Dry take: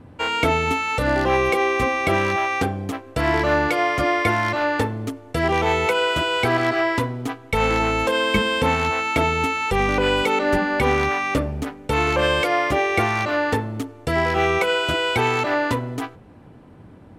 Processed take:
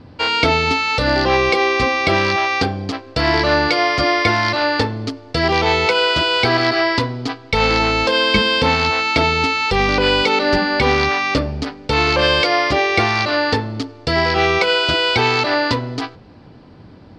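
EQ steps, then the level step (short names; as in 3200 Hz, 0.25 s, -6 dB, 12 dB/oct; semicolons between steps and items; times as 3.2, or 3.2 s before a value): synth low-pass 4700 Hz, resonance Q 6.3; +3.0 dB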